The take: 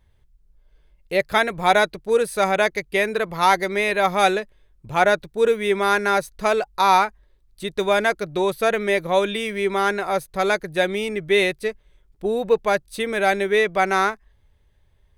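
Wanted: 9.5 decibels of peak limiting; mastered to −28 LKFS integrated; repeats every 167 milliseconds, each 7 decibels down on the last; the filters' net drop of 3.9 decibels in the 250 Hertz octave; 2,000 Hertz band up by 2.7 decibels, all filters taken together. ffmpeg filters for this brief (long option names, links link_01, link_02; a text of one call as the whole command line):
ffmpeg -i in.wav -af "equalizer=frequency=250:width_type=o:gain=-6.5,equalizer=frequency=2000:width_type=o:gain=3.5,alimiter=limit=-12.5dB:level=0:latency=1,aecho=1:1:167|334|501|668|835:0.447|0.201|0.0905|0.0407|0.0183,volume=-4.5dB" out.wav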